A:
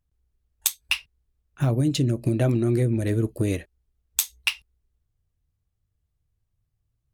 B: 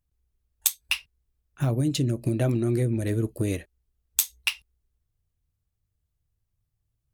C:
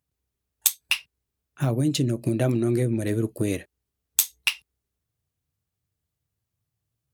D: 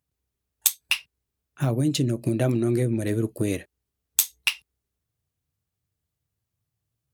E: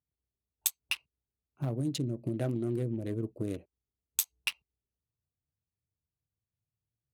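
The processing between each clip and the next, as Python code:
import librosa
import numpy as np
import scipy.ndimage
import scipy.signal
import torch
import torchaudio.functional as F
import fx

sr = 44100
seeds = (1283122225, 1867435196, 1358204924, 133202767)

y1 = fx.high_shelf(x, sr, hz=7900.0, db=5.0)
y1 = y1 * librosa.db_to_amplitude(-2.5)
y2 = scipy.signal.sosfilt(scipy.signal.butter(2, 120.0, 'highpass', fs=sr, output='sos'), y1)
y2 = y2 * librosa.db_to_amplitude(2.5)
y3 = y2
y4 = fx.wiener(y3, sr, points=25)
y4 = y4 * librosa.db_to_amplitude(-9.0)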